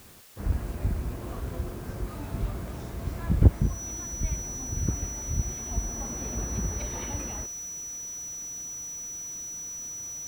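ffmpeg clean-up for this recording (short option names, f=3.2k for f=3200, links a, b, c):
-af "bandreject=f=5.9k:w=30,afwtdn=0.0022"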